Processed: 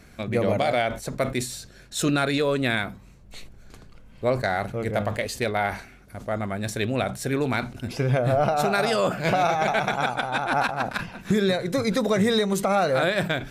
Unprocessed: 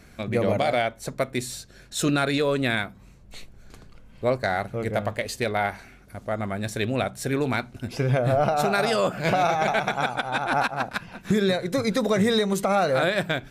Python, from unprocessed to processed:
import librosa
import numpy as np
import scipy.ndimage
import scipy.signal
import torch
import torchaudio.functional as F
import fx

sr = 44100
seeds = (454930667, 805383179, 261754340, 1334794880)

y = fx.sustainer(x, sr, db_per_s=120.0)